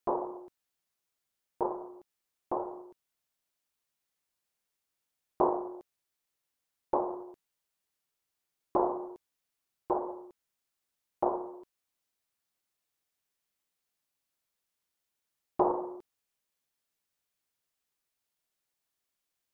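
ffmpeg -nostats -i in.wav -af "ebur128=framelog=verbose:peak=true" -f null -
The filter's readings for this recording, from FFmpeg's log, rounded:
Integrated loudness:
  I:         -34.0 LUFS
  Threshold: -45.7 LUFS
Loudness range:
  LRA:         4.8 LU
  Threshold: -59.2 LUFS
  LRA low:   -41.9 LUFS
  LRA high:  -37.1 LUFS
True peak:
  Peak:      -11.6 dBFS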